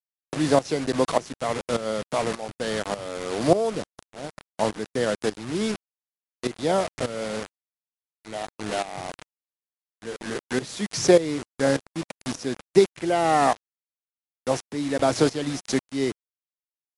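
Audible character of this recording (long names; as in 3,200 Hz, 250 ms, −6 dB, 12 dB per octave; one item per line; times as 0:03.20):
a quantiser's noise floor 6 bits, dither none
tremolo saw up 1.7 Hz, depth 80%
MP3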